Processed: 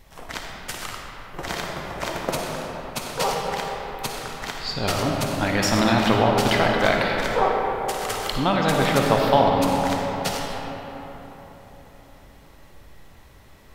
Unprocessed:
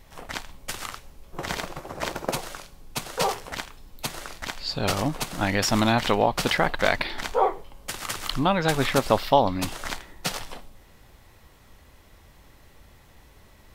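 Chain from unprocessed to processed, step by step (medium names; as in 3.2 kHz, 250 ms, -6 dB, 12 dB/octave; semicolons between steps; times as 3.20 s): algorithmic reverb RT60 4.2 s, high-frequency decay 0.45×, pre-delay 15 ms, DRR -0.5 dB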